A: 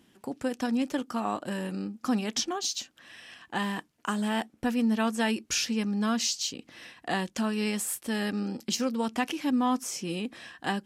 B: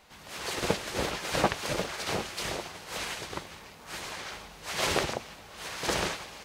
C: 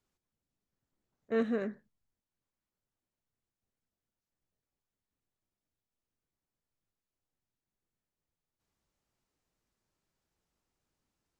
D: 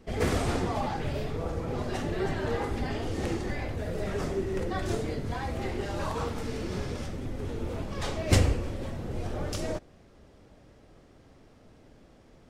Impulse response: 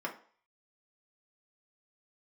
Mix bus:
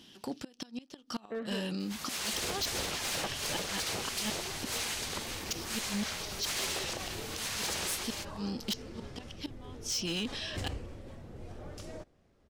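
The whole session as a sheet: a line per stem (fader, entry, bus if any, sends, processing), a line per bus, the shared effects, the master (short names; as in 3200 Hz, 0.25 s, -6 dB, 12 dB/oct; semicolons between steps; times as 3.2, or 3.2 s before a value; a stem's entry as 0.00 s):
+2.5 dB, 0.00 s, no send, flipped gate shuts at -20 dBFS, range -30 dB; band shelf 4100 Hz +11 dB 1.3 oct
+2.0 dB, 1.80 s, no send, high shelf 2800 Hz +12 dB; compressor 6:1, threshold -28 dBFS, peak gain reduction 10.5 dB
-0.5 dB, 0.00 s, no send, Bessel low-pass 2600 Hz; low shelf 230 Hz -7 dB; ending taper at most 180 dB/s
-12.0 dB, 2.25 s, no send, dry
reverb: off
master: hard clip -24 dBFS, distortion -11 dB; limiter -29 dBFS, peak gain reduction 5 dB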